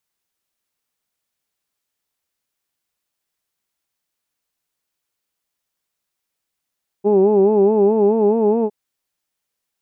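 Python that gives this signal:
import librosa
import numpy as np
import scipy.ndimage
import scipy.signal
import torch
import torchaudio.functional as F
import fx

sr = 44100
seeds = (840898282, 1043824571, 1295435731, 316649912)

y = fx.formant_vowel(sr, seeds[0], length_s=1.66, hz=198.0, glide_st=2.0, vibrato_hz=4.7, vibrato_st=1.05, f1_hz=390.0, f2_hz=850.0, f3_hz=2600.0)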